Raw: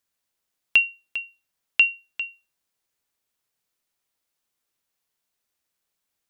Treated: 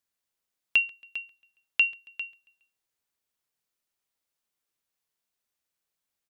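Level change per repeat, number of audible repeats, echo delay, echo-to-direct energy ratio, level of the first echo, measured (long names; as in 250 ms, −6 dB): −6.0 dB, 2, 138 ms, −23.0 dB, −24.0 dB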